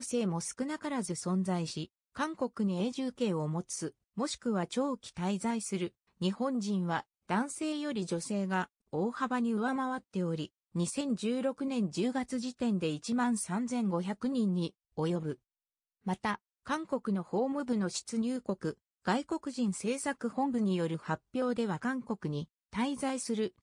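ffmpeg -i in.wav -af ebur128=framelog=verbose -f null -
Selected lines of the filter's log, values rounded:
Integrated loudness:
  I:         -34.1 LUFS
  Threshold: -44.2 LUFS
Loudness range:
  LRA:         2.1 LU
  Threshold: -54.2 LUFS
  LRA low:   -35.1 LUFS
  LRA high:  -33.0 LUFS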